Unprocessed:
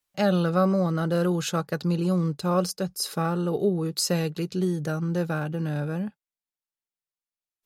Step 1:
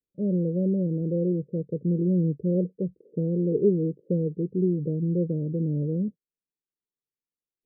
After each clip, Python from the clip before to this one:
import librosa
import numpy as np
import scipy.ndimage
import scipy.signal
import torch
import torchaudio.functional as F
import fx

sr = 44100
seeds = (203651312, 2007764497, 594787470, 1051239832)

y = scipy.signal.sosfilt(scipy.signal.butter(12, 510.0, 'lowpass', fs=sr, output='sos'), x)
y = fx.low_shelf(y, sr, hz=95.0, db=-8.0)
y = fx.rider(y, sr, range_db=10, speed_s=2.0)
y = y * librosa.db_to_amplitude(2.0)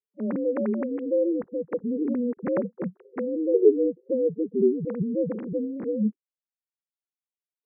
y = fx.sine_speech(x, sr)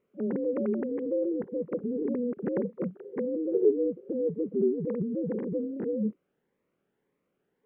y = fx.bin_compress(x, sr, power=0.6)
y = fx.notch_cascade(y, sr, direction='rising', hz=1.8)
y = y * librosa.db_to_amplitude(-6.0)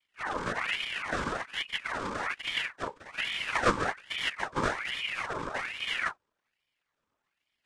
y = fx.cycle_switch(x, sr, every=2, mode='muted')
y = fx.noise_vocoder(y, sr, seeds[0], bands=8)
y = fx.ring_lfo(y, sr, carrier_hz=1700.0, swing_pct=60, hz=1.2)
y = y * librosa.db_to_amplitude(3.0)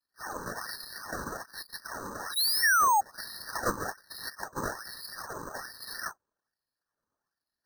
y = fx.spec_paint(x, sr, seeds[1], shape='fall', start_s=1.99, length_s=1.02, low_hz=770.0, high_hz=8700.0, level_db=-18.0)
y = np.repeat(scipy.signal.resample_poly(y, 1, 6), 6)[:len(y)]
y = fx.brickwall_bandstop(y, sr, low_hz=1900.0, high_hz=3800.0)
y = y * librosa.db_to_amplitude(-4.5)